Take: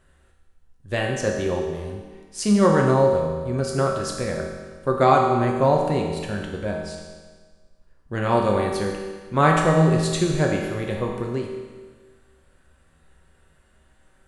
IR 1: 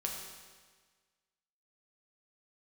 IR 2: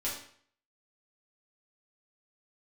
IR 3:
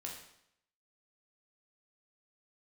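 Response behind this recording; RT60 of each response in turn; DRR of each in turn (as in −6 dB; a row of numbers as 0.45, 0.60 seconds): 1; 1.5, 0.55, 0.75 seconds; −0.5, −7.5, −1.5 decibels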